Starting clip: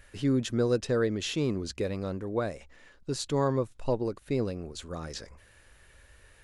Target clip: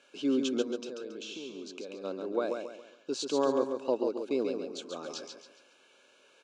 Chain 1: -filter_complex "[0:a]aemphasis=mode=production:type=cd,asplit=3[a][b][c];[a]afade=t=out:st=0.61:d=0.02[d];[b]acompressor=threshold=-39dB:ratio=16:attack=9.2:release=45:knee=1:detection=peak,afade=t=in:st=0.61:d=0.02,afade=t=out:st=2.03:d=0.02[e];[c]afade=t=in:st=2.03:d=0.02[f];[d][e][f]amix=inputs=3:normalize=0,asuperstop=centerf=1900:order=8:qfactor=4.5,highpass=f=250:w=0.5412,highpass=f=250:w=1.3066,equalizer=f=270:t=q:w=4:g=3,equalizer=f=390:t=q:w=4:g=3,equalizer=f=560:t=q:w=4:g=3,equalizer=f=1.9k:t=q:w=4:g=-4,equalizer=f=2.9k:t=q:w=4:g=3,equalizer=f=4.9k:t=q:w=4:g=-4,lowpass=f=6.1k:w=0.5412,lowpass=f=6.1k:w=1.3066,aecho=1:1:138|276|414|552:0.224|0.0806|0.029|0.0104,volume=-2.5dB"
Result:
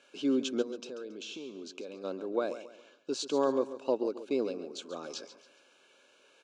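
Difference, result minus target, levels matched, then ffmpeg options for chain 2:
echo-to-direct -7.5 dB
-filter_complex "[0:a]aemphasis=mode=production:type=cd,asplit=3[a][b][c];[a]afade=t=out:st=0.61:d=0.02[d];[b]acompressor=threshold=-39dB:ratio=16:attack=9.2:release=45:knee=1:detection=peak,afade=t=in:st=0.61:d=0.02,afade=t=out:st=2.03:d=0.02[e];[c]afade=t=in:st=2.03:d=0.02[f];[d][e][f]amix=inputs=3:normalize=0,asuperstop=centerf=1900:order=8:qfactor=4.5,highpass=f=250:w=0.5412,highpass=f=250:w=1.3066,equalizer=f=270:t=q:w=4:g=3,equalizer=f=390:t=q:w=4:g=3,equalizer=f=560:t=q:w=4:g=3,equalizer=f=1.9k:t=q:w=4:g=-4,equalizer=f=2.9k:t=q:w=4:g=3,equalizer=f=4.9k:t=q:w=4:g=-4,lowpass=f=6.1k:w=0.5412,lowpass=f=6.1k:w=1.3066,aecho=1:1:138|276|414|552:0.531|0.191|0.0688|0.0248,volume=-2.5dB"

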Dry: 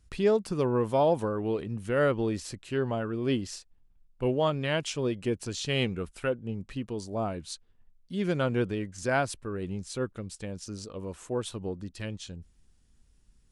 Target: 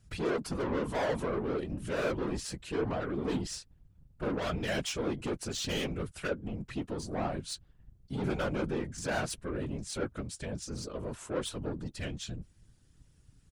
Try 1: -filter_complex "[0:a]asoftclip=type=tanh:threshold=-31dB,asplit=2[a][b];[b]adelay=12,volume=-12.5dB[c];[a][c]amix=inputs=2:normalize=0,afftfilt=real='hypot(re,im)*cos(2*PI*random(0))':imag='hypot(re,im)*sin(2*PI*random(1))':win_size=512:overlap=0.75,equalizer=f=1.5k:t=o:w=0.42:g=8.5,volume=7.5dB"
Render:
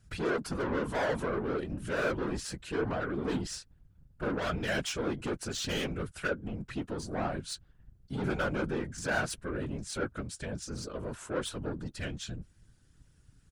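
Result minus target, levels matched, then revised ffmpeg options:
2000 Hz band +3.5 dB
-filter_complex "[0:a]asoftclip=type=tanh:threshold=-31dB,asplit=2[a][b];[b]adelay=12,volume=-12.5dB[c];[a][c]amix=inputs=2:normalize=0,afftfilt=real='hypot(re,im)*cos(2*PI*random(0))':imag='hypot(re,im)*sin(2*PI*random(1))':win_size=512:overlap=0.75,equalizer=f=1.5k:t=o:w=0.42:g=2.5,volume=7.5dB"

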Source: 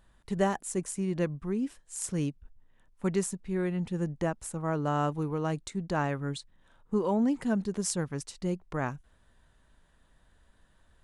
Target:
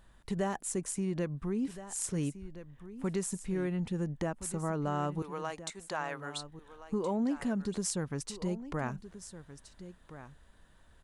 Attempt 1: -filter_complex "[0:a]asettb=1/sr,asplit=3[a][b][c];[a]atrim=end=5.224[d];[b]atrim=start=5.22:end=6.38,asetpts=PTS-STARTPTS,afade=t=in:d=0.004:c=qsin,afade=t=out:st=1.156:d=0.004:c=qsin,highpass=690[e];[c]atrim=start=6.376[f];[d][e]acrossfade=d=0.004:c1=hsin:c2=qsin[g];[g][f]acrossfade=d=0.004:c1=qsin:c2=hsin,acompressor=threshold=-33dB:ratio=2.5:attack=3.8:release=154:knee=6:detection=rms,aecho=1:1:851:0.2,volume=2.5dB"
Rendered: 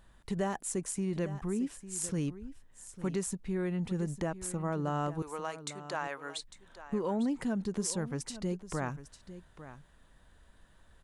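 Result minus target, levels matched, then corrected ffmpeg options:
echo 0.519 s early
-filter_complex "[0:a]asettb=1/sr,asplit=3[a][b][c];[a]atrim=end=5.224[d];[b]atrim=start=5.22:end=6.38,asetpts=PTS-STARTPTS,afade=t=in:d=0.004:c=qsin,afade=t=out:st=1.156:d=0.004:c=qsin,highpass=690[e];[c]atrim=start=6.376[f];[d][e]acrossfade=d=0.004:c1=hsin:c2=qsin[g];[g][f]acrossfade=d=0.004:c1=qsin:c2=hsin,acompressor=threshold=-33dB:ratio=2.5:attack=3.8:release=154:knee=6:detection=rms,aecho=1:1:1370:0.2,volume=2.5dB"

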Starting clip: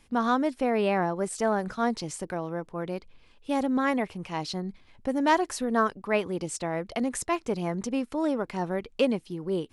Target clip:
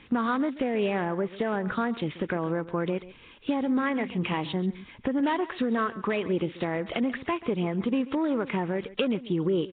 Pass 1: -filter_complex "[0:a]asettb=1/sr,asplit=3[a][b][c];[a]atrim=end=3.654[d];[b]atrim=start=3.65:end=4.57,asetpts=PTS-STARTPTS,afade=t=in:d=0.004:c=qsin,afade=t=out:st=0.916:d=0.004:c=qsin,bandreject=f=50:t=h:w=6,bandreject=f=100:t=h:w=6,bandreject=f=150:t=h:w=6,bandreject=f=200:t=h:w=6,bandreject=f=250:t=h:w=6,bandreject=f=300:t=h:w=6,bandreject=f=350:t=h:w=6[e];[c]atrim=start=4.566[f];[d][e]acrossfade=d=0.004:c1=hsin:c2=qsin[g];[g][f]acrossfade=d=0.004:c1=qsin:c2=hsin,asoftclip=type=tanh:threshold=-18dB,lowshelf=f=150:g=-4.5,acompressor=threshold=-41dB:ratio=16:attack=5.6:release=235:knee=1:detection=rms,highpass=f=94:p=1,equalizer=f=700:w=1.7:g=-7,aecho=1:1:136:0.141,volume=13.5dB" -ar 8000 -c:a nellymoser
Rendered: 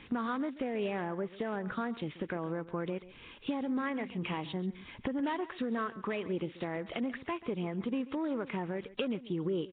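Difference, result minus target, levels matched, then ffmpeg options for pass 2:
compressor: peak gain reduction +7.5 dB
-filter_complex "[0:a]asettb=1/sr,asplit=3[a][b][c];[a]atrim=end=3.654[d];[b]atrim=start=3.65:end=4.57,asetpts=PTS-STARTPTS,afade=t=in:d=0.004:c=qsin,afade=t=out:st=0.916:d=0.004:c=qsin,bandreject=f=50:t=h:w=6,bandreject=f=100:t=h:w=6,bandreject=f=150:t=h:w=6,bandreject=f=200:t=h:w=6,bandreject=f=250:t=h:w=6,bandreject=f=300:t=h:w=6,bandreject=f=350:t=h:w=6[e];[c]atrim=start=4.566[f];[d][e]acrossfade=d=0.004:c1=hsin:c2=qsin[g];[g][f]acrossfade=d=0.004:c1=qsin:c2=hsin,asoftclip=type=tanh:threshold=-18dB,lowshelf=f=150:g=-4.5,acompressor=threshold=-33dB:ratio=16:attack=5.6:release=235:knee=1:detection=rms,highpass=f=94:p=1,equalizer=f=700:w=1.7:g=-7,aecho=1:1:136:0.141,volume=13.5dB" -ar 8000 -c:a nellymoser

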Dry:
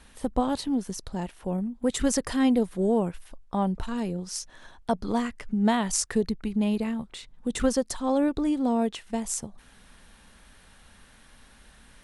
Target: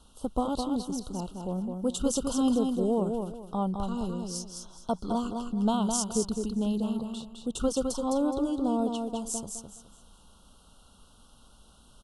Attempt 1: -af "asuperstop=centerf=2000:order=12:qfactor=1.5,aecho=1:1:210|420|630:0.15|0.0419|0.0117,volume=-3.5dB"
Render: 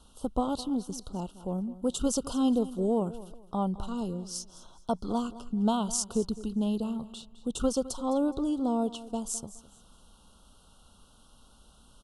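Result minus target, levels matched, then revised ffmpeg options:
echo-to-direct -11.5 dB
-af "asuperstop=centerf=2000:order=12:qfactor=1.5,aecho=1:1:210|420|630|840:0.562|0.157|0.0441|0.0123,volume=-3.5dB"

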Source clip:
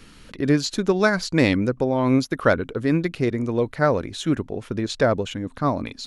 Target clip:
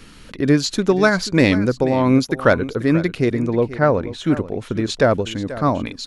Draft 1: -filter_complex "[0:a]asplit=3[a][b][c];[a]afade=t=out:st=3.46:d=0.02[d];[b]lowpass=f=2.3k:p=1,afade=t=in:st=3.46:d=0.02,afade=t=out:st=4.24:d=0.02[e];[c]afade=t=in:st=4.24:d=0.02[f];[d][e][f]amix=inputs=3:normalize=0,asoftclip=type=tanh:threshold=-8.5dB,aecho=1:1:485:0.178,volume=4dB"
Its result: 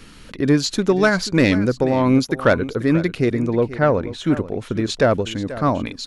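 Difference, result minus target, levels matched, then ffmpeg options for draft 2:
soft clip: distortion +11 dB
-filter_complex "[0:a]asplit=3[a][b][c];[a]afade=t=out:st=3.46:d=0.02[d];[b]lowpass=f=2.3k:p=1,afade=t=in:st=3.46:d=0.02,afade=t=out:st=4.24:d=0.02[e];[c]afade=t=in:st=4.24:d=0.02[f];[d][e][f]amix=inputs=3:normalize=0,asoftclip=type=tanh:threshold=-2dB,aecho=1:1:485:0.178,volume=4dB"

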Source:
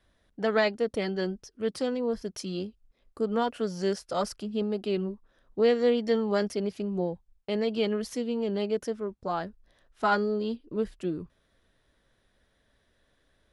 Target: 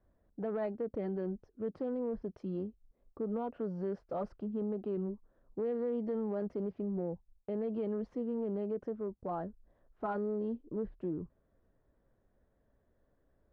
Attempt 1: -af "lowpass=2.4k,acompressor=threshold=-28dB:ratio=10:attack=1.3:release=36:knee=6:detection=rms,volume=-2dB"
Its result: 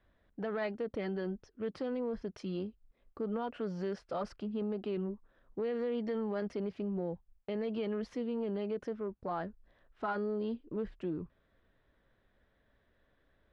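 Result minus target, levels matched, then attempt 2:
2000 Hz band +9.0 dB
-af "lowpass=840,acompressor=threshold=-28dB:ratio=10:attack=1.3:release=36:knee=6:detection=rms,volume=-2dB"

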